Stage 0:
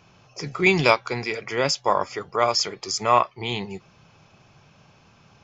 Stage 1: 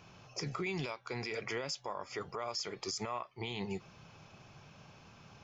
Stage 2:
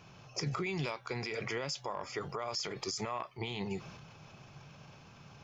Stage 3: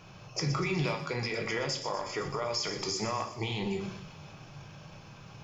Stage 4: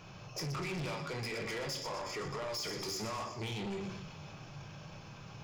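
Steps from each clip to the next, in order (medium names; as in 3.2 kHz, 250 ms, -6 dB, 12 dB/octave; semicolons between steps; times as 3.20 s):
compression 12:1, threshold -29 dBFS, peak gain reduction 18.5 dB; peak limiter -26 dBFS, peak gain reduction 10 dB; trim -2 dB
peaking EQ 140 Hz +5 dB 0.3 oct; transient shaper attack +3 dB, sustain +7 dB
feedback echo behind a high-pass 122 ms, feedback 59%, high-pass 3.7 kHz, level -9 dB; simulated room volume 98 m³, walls mixed, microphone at 0.56 m; trim +3 dB
saturation -35.5 dBFS, distortion -8 dB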